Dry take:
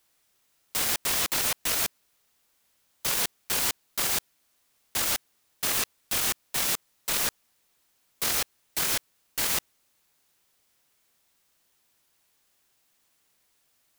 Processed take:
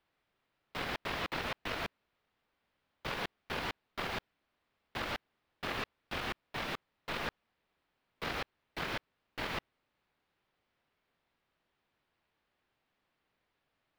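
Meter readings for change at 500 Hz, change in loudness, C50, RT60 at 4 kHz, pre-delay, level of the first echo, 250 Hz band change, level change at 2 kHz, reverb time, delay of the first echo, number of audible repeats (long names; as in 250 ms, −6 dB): −2.5 dB, −13.0 dB, no reverb audible, no reverb audible, no reverb audible, no echo audible, −2.0 dB, −5.5 dB, no reverb audible, no echo audible, no echo audible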